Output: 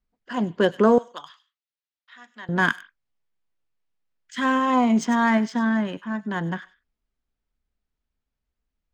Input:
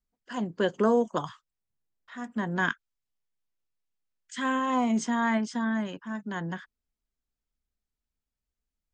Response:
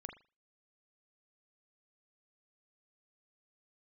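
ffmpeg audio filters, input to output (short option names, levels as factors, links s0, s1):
-filter_complex "[0:a]asettb=1/sr,asplit=3[s0][s1][s2];[s0]atrim=end=0.984[s3];[s1]atrim=start=0.98:end=2.49,asetpts=PTS-STARTPTS,afade=t=in:d=0.004:c=qsin,afade=t=out:st=1.506:d=0.004:c=qsin,bandpass=f=4100:t=q:w=1.1:csg=0[s4];[s2]atrim=start=2.486[s5];[s3][s4]acrossfade=d=0.004:c1=hsin:c2=qsin[s6];[s6][s5]acrossfade=d=0.004:c1=qsin:c2=hsin,adynamicsmooth=sensitivity=6:basefreq=4200,asplit=2[s7][s8];[s8]aderivative[s9];[1:a]atrim=start_sample=2205,atrim=end_sample=4410,adelay=98[s10];[s9][s10]afir=irnorm=-1:irlink=0,volume=0.631[s11];[s7][s11]amix=inputs=2:normalize=0,volume=2.11"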